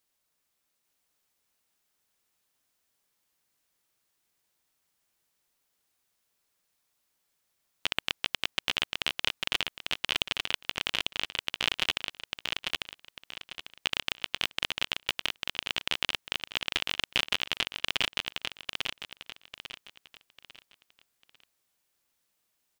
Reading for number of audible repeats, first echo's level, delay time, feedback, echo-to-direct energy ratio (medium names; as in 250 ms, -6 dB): 4, -3.5 dB, 847 ms, 33%, -3.0 dB